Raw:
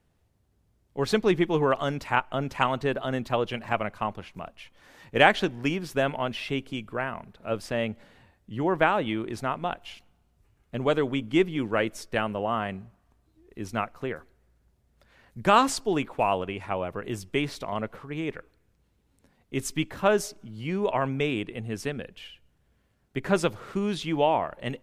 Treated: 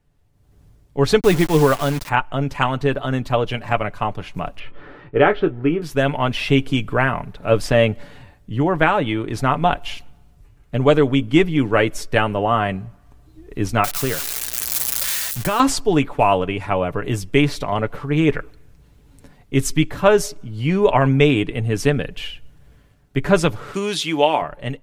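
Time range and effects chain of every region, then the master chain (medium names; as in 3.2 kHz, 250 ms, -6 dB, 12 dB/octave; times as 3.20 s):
1.20–2.09 s: CVSD coder 64 kbps + word length cut 6-bit, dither none
4.59–5.82 s: distance through air 410 m + doubling 24 ms -10.5 dB + small resonant body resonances 380/1300 Hz, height 11 dB, ringing for 25 ms
13.84–15.60 s: zero-crossing glitches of -20.5 dBFS + compression 3:1, threshold -27 dBFS
23.74–24.42 s: high-pass 230 Hz + treble shelf 2.5 kHz +11.5 dB
whole clip: bass shelf 94 Hz +10 dB; comb 6.9 ms, depth 43%; level rider gain up to 16 dB; trim -1 dB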